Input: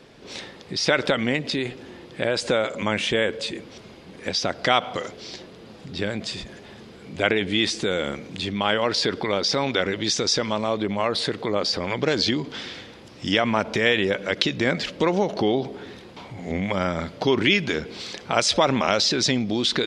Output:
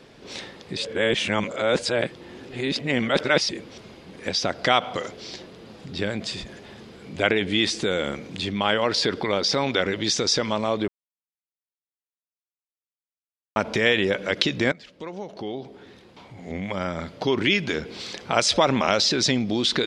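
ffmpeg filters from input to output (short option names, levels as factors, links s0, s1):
-filter_complex "[0:a]asplit=6[s0][s1][s2][s3][s4][s5];[s0]atrim=end=0.772[s6];[s1]atrim=start=0.768:end=3.492,asetpts=PTS-STARTPTS,areverse[s7];[s2]atrim=start=3.488:end=10.88,asetpts=PTS-STARTPTS,afade=t=out:st=7.388:d=0.004:c=hsin[s8];[s3]atrim=start=10.88:end=13.56,asetpts=PTS-STARTPTS,volume=0[s9];[s4]atrim=start=13.56:end=14.72,asetpts=PTS-STARTPTS,afade=t=in:d=0.004:c=hsin,afade=t=out:st=1.156:d=0.004:c=hsin:silence=0.1[s10];[s5]atrim=start=14.72,asetpts=PTS-STARTPTS,afade=t=in:d=3.53:silence=0.1[s11];[s6][s7]acrossfade=d=0.004:c1=hsin:c2=hsin[s12];[s8][s9][s10][s11]concat=n=4:v=0:a=1[s13];[s12][s13]acrossfade=d=0.004:c1=hsin:c2=hsin"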